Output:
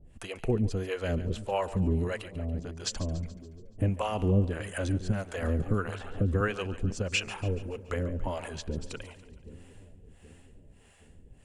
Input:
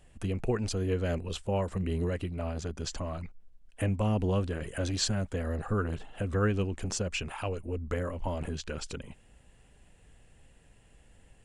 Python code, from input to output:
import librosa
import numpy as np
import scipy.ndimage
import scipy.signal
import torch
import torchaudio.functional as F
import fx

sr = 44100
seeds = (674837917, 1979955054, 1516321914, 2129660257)

y = fx.level_steps(x, sr, step_db=18, at=(2.22, 2.84))
y = fx.harmonic_tremolo(y, sr, hz=1.6, depth_pct=100, crossover_hz=500.0)
y = fx.echo_split(y, sr, split_hz=440.0, low_ms=775, high_ms=142, feedback_pct=52, wet_db=-15)
y = fx.band_squash(y, sr, depth_pct=70, at=(5.42, 6.41))
y = y * librosa.db_to_amplitude(6.0)